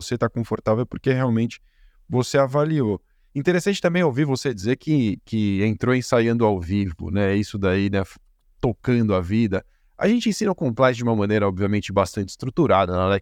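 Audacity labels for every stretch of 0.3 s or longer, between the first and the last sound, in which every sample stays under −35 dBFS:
1.560000	2.100000	silence
2.960000	3.350000	silence
8.130000	8.630000	silence
9.600000	10.000000	silence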